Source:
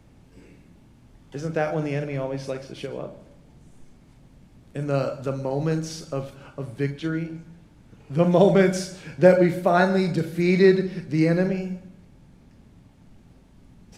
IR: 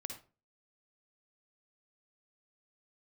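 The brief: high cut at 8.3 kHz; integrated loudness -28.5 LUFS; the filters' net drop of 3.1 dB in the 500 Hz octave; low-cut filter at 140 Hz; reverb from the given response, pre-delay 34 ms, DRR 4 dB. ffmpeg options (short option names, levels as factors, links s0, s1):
-filter_complex "[0:a]highpass=140,lowpass=8300,equalizer=f=500:t=o:g=-4,asplit=2[s0][s1];[1:a]atrim=start_sample=2205,adelay=34[s2];[s1][s2]afir=irnorm=-1:irlink=0,volume=0.841[s3];[s0][s3]amix=inputs=2:normalize=0,volume=0.562"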